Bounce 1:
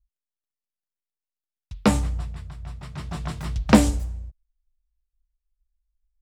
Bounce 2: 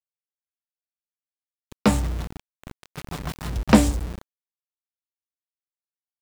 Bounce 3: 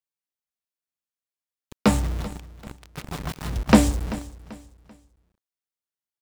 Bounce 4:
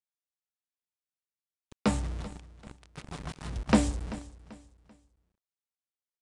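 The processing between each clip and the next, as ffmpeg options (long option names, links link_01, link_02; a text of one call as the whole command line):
ffmpeg -i in.wav -af "anlmdn=0.158,aeval=exprs='val(0)*gte(abs(val(0)),0.0355)':channel_layout=same" out.wav
ffmpeg -i in.wav -af "aecho=1:1:388|776|1164:0.141|0.0466|0.0154" out.wav
ffmpeg -i in.wav -af "aresample=22050,aresample=44100,volume=-8dB" out.wav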